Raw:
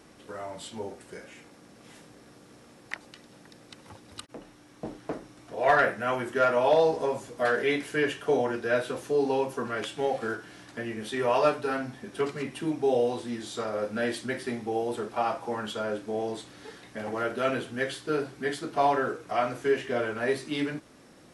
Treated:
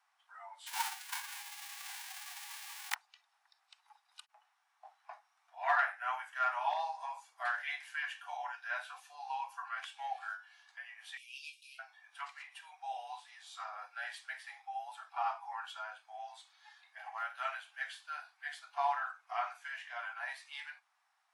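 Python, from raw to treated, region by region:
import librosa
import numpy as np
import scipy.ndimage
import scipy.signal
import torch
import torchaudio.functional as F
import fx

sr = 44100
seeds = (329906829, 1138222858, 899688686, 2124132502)

y = fx.envelope_flatten(x, sr, power=0.1, at=(0.66, 2.93), fade=0.02)
y = fx.transient(y, sr, attack_db=7, sustain_db=-7, at=(0.66, 2.93), fade=0.02)
y = fx.env_flatten(y, sr, amount_pct=50, at=(0.66, 2.93), fade=0.02)
y = fx.chain(y, sr, fx.steep_highpass(hz=2400.0, slope=72),
    fx.high_shelf(hz=7600.0, db=7.5), at=(11.17, 11.79))
y = scipy.signal.sosfilt(scipy.signal.butter(12, 750.0, 'highpass', fs=sr, output='sos'), y)
y = fx.noise_reduce_blind(y, sr, reduce_db=10)
y = fx.high_shelf(y, sr, hz=2700.0, db=-11.0)
y = y * 10.0 ** (-3.5 / 20.0)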